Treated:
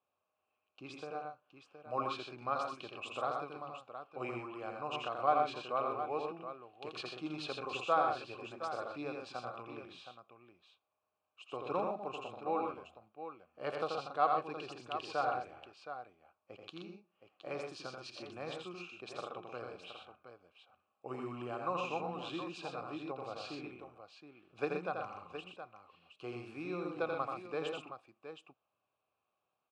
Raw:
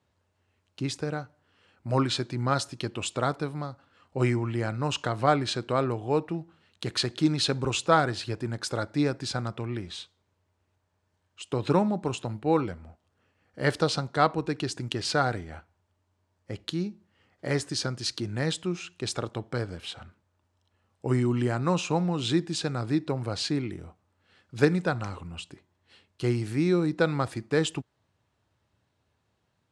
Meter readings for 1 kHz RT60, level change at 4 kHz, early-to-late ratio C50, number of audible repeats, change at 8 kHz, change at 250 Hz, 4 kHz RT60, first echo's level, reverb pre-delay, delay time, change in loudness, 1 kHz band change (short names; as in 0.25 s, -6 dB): none, -15.0 dB, none, 3, -23.0 dB, -17.0 dB, none, -4.5 dB, none, 84 ms, -11.0 dB, -5.0 dB